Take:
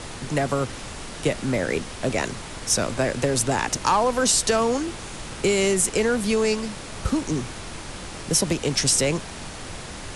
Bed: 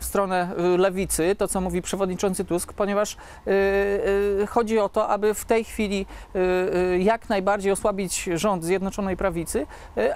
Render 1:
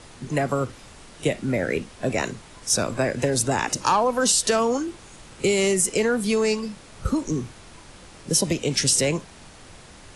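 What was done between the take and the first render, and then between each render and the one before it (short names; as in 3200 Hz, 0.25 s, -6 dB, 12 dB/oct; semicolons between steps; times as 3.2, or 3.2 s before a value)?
noise print and reduce 10 dB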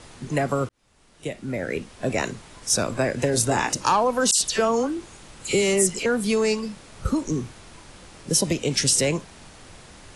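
0.69–2.16 fade in; 3.31–3.73 doubler 25 ms -6 dB; 4.31–6.06 dispersion lows, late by 94 ms, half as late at 2600 Hz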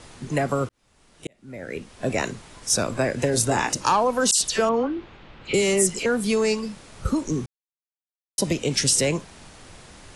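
1.27–2.06 fade in; 4.69–5.54 LPF 3500 Hz 24 dB/oct; 7.46–8.38 mute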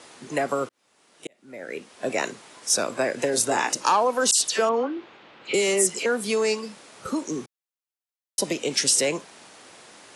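HPF 310 Hz 12 dB/oct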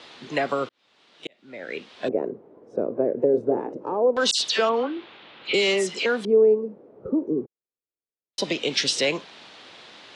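LFO low-pass square 0.24 Hz 440–3700 Hz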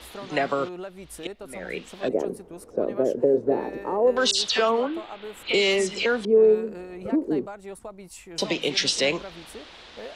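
add bed -17 dB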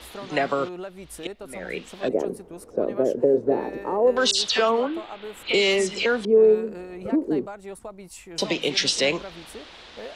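gain +1 dB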